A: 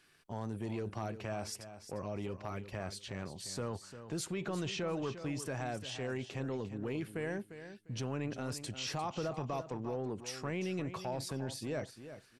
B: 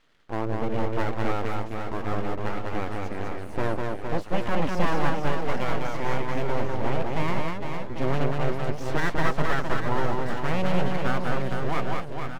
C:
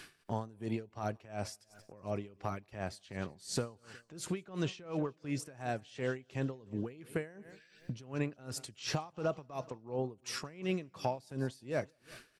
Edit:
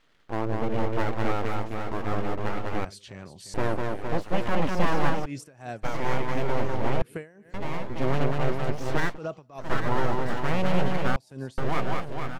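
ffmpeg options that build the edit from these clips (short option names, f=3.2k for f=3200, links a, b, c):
-filter_complex "[2:a]asplit=4[a][b][c][d];[1:a]asplit=6[e][f][g][h][i][j];[e]atrim=end=2.852[k];[0:a]atrim=start=2.848:end=3.542[l];[f]atrim=start=3.538:end=5.26[m];[a]atrim=start=5.24:end=5.85[n];[g]atrim=start=5.83:end=7.022[o];[b]atrim=start=7.018:end=7.542[p];[h]atrim=start=7.538:end=9.19[q];[c]atrim=start=9.03:end=9.74[r];[i]atrim=start=9.58:end=11.162[s];[d]atrim=start=11.158:end=11.582[t];[j]atrim=start=11.578[u];[k][l]acrossfade=d=0.004:c1=hsin:c2=hsin[v];[v][m]acrossfade=d=0.004:c1=hsin:c2=hsin[w];[w][n]acrossfade=d=0.02:c1=tri:c2=tri[x];[x][o]acrossfade=d=0.02:c1=tri:c2=tri[y];[y][p]acrossfade=d=0.004:c1=hsin:c2=hsin[z];[z][q]acrossfade=d=0.004:c1=hsin:c2=hsin[aa];[aa][r]acrossfade=d=0.16:c1=tri:c2=tri[ab];[ab][s]acrossfade=d=0.16:c1=tri:c2=tri[ac];[ac][t]acrossfade=d=0.004:c1=hsin:c2=hsin[ad];[ad][u]acrossfade=d=0.004:c1=hsin:c2=hsin"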